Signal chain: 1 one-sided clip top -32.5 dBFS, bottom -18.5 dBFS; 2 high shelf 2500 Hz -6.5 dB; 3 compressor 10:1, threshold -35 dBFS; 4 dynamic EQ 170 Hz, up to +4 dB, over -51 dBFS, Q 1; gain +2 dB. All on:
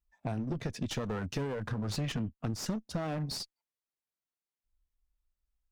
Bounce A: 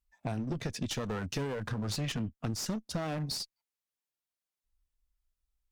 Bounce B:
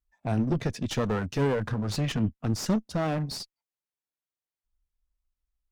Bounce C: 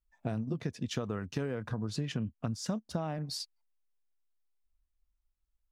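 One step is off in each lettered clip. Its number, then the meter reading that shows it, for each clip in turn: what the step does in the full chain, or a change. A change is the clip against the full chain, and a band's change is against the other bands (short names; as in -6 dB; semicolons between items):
2, 8 kHz band +3.5 dB; 3, mean gain reduction 6.0 dB; 1, distortion -5 dB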